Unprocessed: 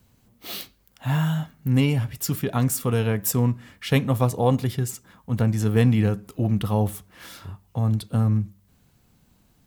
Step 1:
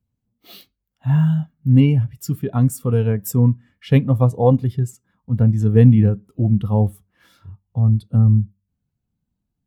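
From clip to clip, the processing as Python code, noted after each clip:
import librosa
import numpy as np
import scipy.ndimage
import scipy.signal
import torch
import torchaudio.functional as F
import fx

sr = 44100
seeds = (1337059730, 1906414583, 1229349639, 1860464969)

y = fx.spectral_expand(x, sr, expansion=1.5)
y = F.gain(torch.from_numpy(y), 6.5).numpy()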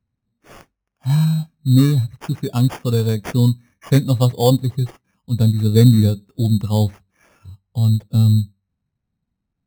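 y = fx.sample_hold(x, sr, seeds[0], rate_hz=4000.0, jitter_pct=0)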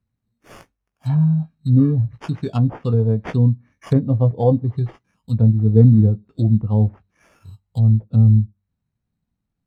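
y = fx.doubler(x, sr, ms=18.0, db=-10.0)
y = fx.env_lowpass_down(y, sr, base_hz=710.0, full_db=-13.0)
y = F.gain(torch.from_numpy(y), -1.0).numpy()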